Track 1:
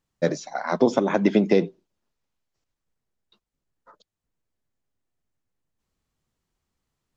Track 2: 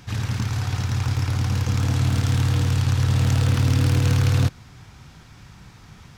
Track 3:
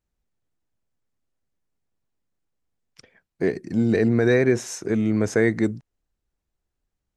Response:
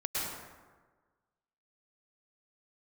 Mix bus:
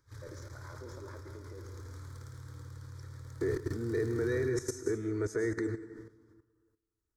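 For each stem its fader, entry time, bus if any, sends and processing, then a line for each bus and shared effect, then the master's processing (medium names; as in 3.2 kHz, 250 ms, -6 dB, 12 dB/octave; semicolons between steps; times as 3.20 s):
-16.5 dB, 0.00 s, send -9.5 dB, peak limiter -14.5 dBFS, peak gain reduction 9 dB
-19.5 dB, 0.00 s, send -3 dB, none
-0.5 dB, 0.00 s, send -11 dB, band-stop 600 Hz, Q 12; peak limiter -15 dBFS, peak gain reduction 7.5 dB; comb of notches 530 Hz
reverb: on, RT60 1.4 s, pre-delay 97 ms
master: level held to a coarse grid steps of 14 dB; static phaser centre 740 Hz, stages 6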